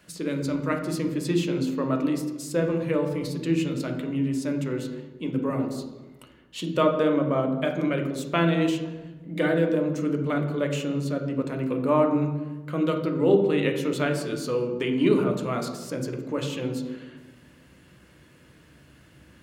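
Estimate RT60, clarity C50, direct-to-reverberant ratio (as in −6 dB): 1.2 s, 7.0 dB, 3.5 dB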